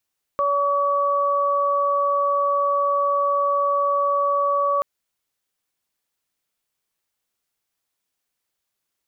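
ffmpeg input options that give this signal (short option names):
-f lavfi -i "aevalsrc='0.0794*sin(2*PI*568*t)+0.112*sin(2*PI*1136*t)':d=4.43:s=44100"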